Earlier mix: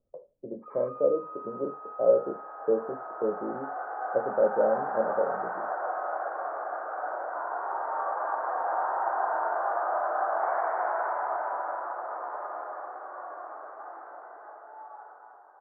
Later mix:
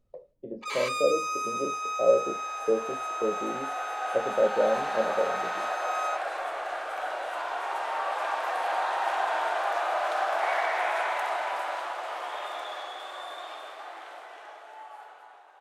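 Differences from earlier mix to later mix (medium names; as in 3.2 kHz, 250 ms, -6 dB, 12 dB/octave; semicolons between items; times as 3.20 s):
first sound +10.0 dB; master: remove steep low-pass 1.5 kHz 48 dB/octave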